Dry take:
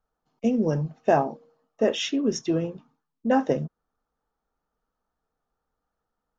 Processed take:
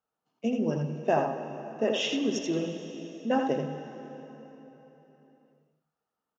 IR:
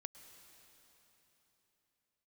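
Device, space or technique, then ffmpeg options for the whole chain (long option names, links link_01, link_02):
PA in a hall: -filter_complex "[0:a]highpass=140,equalizer=frequency=2800:width_type=o:width=0.26:gain=7,aecho=1:1:82:0.562[link_01];[1:a]atrim=start_sample=2205[link_02];[link_01][link_02]afir=irnorm=-1:irlink=0"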